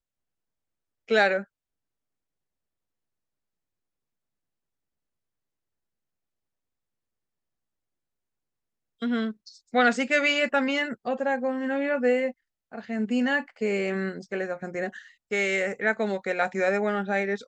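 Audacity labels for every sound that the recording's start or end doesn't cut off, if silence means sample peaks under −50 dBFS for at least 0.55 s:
1.080000	1.440000	sound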